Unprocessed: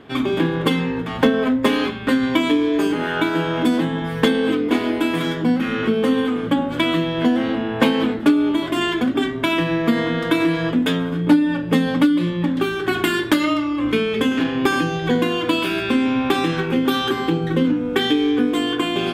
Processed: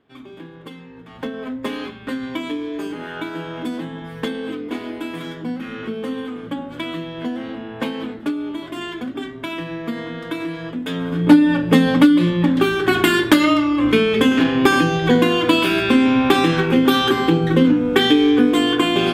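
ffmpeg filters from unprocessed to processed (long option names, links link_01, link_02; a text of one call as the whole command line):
ffmpeg -i in.wav -af "volume=4dB,afade=type=in:start_time=0.89:duration=0.79:silence=0.298538,afade=type=in:start_time=10.85:duration=0.49:silence=0.237137" out.wav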